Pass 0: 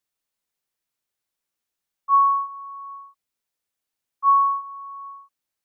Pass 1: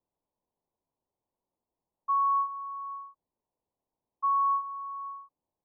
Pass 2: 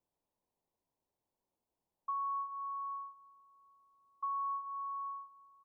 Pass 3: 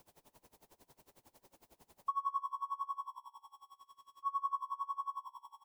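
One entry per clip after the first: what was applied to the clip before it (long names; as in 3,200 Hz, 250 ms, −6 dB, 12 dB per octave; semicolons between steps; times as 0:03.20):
elliptic low-pass filter 1,000 Hz; brickwall limiter −29 dBFS, peak gain reduction 10 dB; level +7 dB
downward compressor 3 to 1, threshold −38 dBFS, peak gain reduction 10 dB; repeating echo 438 ms, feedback 55%, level −23.5 dB; level −1 dB
converter with a step at zero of −58 dBFS; echo with shifted repeats 148 ms, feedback 50%, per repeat −64 Hz, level −11 dB; tremolo with a sine in dB 11 Hz, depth 25 dB; level +5 dB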